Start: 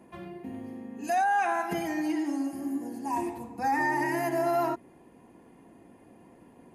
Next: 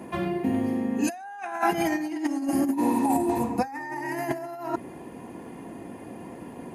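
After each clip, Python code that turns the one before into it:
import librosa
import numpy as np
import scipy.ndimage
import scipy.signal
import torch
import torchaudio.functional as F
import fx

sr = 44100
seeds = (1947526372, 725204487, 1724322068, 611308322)

y = fx.spec_repair(x, sr, seeds[0], start_s=2.76, length_s=0.59, low_hz=850.0, high_hz=7000.0, source='after')
y = scipy.signal.sosfilt(scipy.signal.butter(2, 59.0, 'highpass', fs=sr, output='sos'), y)
y = fx.over_compress(y, sr, threshold_db=-34.0, ratio=-0.5)
y = F.gain(torch.from_numpy(y), 8.5).numpy()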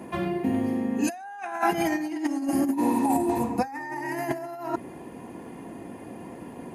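y = x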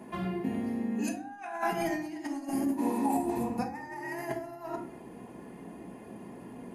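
y = fx.room_shoebox(x, sr, seeds[1], volume_m3=450.0, walls='furnished', distance_m=1.4)
y = F.gain(torch.from_numpy(y), -7.5).numpy()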